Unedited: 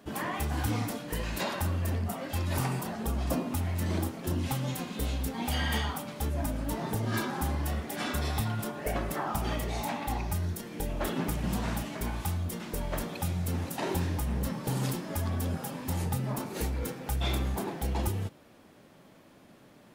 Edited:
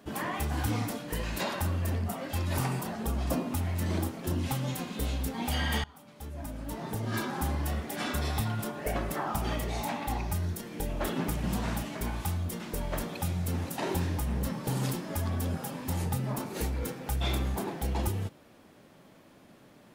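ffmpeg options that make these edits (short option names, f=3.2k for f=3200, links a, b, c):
-filter_complex "[0:a]asplit=2[a][b];[a]atrim=end=5.84,asetpts=PTS-STARTPTS,afade=t=out:st=5.836:d=0.004:c=hsin:silence=0.0668344[c];[b]atrim=start=5.84,asetpts=PTS-STARTPTS,afade=t=in:d=1.59:silence=0.0668344[d];[c][d]concat=n=2:v=0:a=1"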